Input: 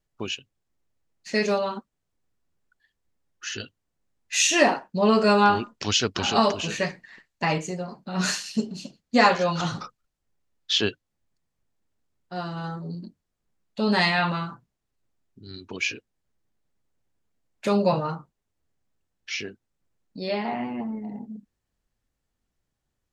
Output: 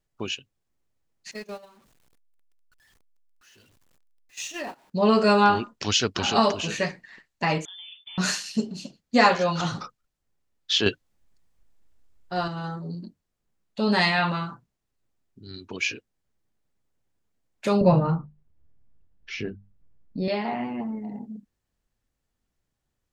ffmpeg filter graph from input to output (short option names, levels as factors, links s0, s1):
-filter_complex "[0:a]asettb=1/sr,asplit=3[s0][s1][s2];[s0]atrim=end=1.314[s3];[s1]atrim=start=1.31:end=4.9,asetpts=PTS-STARTPTS,afade=t=in:d=0.004:c=qsin,afade=t=out:st=3.586:d=0.004:c=qsin,aeval=exprs='val(0)+0.5*0.0473*sgn(val(0))':c=same,agate=range=0.0355:threshold=0.1:ratio=16:release=100:detection=peak,acompressor=threshold=0.0158:ratio=3:attack=3.2:release=140:knee=1:detection=peak[s4];[s2]atrim=start=4.896[s5];[s3][s4]acrossfade=d=0.004:c1=hsin:c2=qsin[s6];[s6][s5]acrossfade=d=0.004:c1=qsin:c2=hsin,asettb=1/sr,asplit=3[s7][s8][s9];[s7]atrim=end=7.654[s10];[s8]atrim=start=7.65:end=8.18,asetpts=PTS-STARTPTS,afade=t=in:d=0.004:c=qsin,afade=t=out:st=0.526:d=0.004:c=qsin,acompressor=threshold=0.0126:ratio=16:attack=3.2:release=140:knee=1:detection=peak,lowpass=f=3100:t=q:w=0.5098,lowpass=f=3100:t=q:w=0.6013,lowpass=f=3100:t=q:w=0.9,lowpass=f=3100:t=q:w=2.563,afreqshift=-3700[s11];[s9]atrim=start=8.176[s12];[s10][s11]acrossfade=d=0.004:c1=hsin:c2=qsin[s13];[s13][s12]acrossfade=d=0.004:c1=qsin:c2=hsin,asettb=1/sr,asplit=3[s14][s15][s16];[s14]atrim=end=10.864[s17];[s15]atrim=start=10.86:end=12.48,asetpts=PTS-STARTPTS,afade=t=in:d=0.004:c=qsin,afade=t=out:st=1.616:d=0.004:c=qsin,asubboost=boost=11:cutoff=61,acontrast=46[s18];[s16]atrim=start=12.476[s19];[s17][s18]acrossfade=d=0.004:c1=hsin:c2=qsin[s20];[s20][s19]acrossfade=d=0.004:c1=qsin:c2=hsin,asettb=1/sr,asplit=3[s21][s22][s23];[s21]atrim=end=17.814[s24];[s22]atrim=start=17.81:end=20.28,asetpts=PTS-STARTPTS,afade=t=in:d=0.004:c=qsin,afade=t=out:st=2.466:d=0.004:c=qsin,aemphasis=mode=reproduction:type=riaa,bandreject=f=50:t=h:w=6,bandreject=f=100:t=h:w=6,bandreject=f=150:t=h:w=6,bandreject=f=200:t=h:w=6[s25];[s23]atrim=start=20.276[s26];[s24][s25]acrossfade=d=0.004:c1=hsin:c2=qsin[s27];[s27][s26]acrossfade=d=0.004:c1=qsin:c2=hsin"